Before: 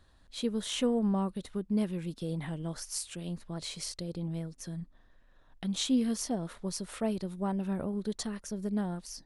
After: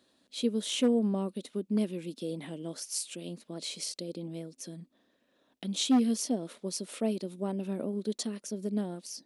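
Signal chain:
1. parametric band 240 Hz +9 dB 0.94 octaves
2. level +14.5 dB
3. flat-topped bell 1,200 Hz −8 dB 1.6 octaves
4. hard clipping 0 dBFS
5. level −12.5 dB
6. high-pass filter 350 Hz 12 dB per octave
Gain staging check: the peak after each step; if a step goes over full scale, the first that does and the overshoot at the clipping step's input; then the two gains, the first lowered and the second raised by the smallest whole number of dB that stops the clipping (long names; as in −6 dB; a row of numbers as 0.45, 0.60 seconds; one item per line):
−11.0, +3.5, +3.5, 0.0, −12.5, −16.0 dBFS
step 2, 3.5 dB
step 2 +10.5 dB, step 5 −8.5 dB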